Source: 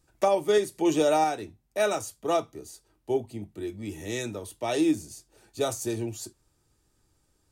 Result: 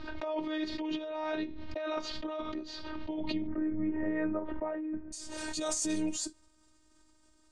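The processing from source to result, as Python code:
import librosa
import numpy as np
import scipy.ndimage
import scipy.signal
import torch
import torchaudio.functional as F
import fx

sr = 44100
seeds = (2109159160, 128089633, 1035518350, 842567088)

y = fx.dynamic_eq(x, sr, hz=340.0, q=1.5, threshold_db=-32.0, ratio=4.0, max_db=-4)
y = fx.over_compress(y, sr, threshold_db=-33.0, ratio=-1.0)
y = fx.robotise(y, sr, hz=310.0)
y = fx.steep_lowpass(y, sr, hz=fx.steps((0.0, 4200.0), (3.46, 1800.0), (5.12, 9000.0)), slope=36)
y = fx.pre_swell(y, sr, db_per_s=24.0)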